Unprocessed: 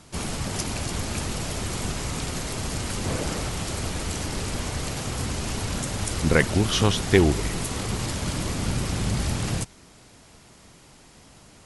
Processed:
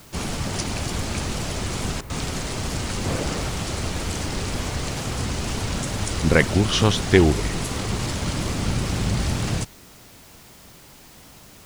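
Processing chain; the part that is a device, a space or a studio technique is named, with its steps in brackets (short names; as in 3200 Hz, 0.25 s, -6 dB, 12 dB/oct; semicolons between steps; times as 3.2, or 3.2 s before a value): worn cassette (LPF 8600 Hz 12 dB/oct; wow and flutter; level dips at 2.01, 87 ms -11 dB; white noise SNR 27 dB); gain +2.5 dB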